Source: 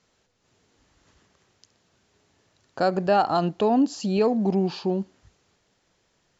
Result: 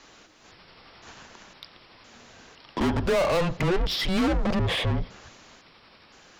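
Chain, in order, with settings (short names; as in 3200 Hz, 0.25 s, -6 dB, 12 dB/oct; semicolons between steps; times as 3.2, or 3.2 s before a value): trilling pitch shifter -4.5 st, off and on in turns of 0.51 s; overdrive pedal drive 34 dB, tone 3900 Hz, clips at -8.5 dBFS; frequency shift -180 Hz; gain -8 dB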